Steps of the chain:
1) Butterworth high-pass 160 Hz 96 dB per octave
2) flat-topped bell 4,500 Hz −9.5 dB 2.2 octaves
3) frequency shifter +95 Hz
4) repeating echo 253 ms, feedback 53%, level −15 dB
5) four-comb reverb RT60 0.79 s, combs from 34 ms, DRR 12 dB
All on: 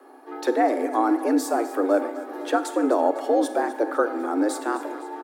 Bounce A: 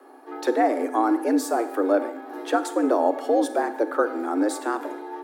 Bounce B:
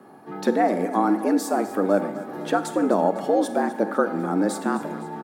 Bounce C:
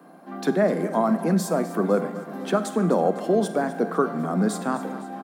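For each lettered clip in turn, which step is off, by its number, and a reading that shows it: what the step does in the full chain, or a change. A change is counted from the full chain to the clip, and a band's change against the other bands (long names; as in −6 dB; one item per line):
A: 4, echo-to-direct ratio −9.5 dB to −12.0 dB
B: 1, change in momentary loudness spread −1 LU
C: 3, 1 kHz band −3.0 dB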